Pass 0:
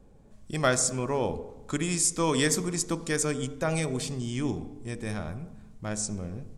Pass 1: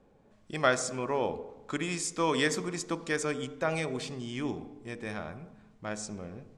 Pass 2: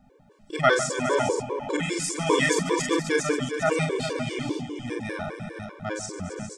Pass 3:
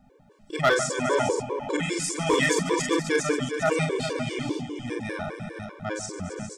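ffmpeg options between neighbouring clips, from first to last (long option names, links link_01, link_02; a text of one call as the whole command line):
ffmpeg -i in.wav -af "lowpass=2800,aemphasis=mode=production:type=bsi" out.wav
ffmpeg -i in.wav -af "aecho=1:1:44|144|272|403|474|530:0.668|0.211|0.266|0.299|0.316|0.316,afftfilt=real='re*gt(sin(2*PI*5*pts/sr)*(1-2*mod(floor(b*sr/1024/300),2)),0)':imag='im*gt(sin(2*PI*5*pts/sr)*(1-2*mod(floor(b*sr/1024/300),2)),0)':win_size=1024:overlap=0.75,volume=7dB" out.wav
ffmpeg -i in.wav -af "asoftclip=type=hard:threshold=-14dB" out.wav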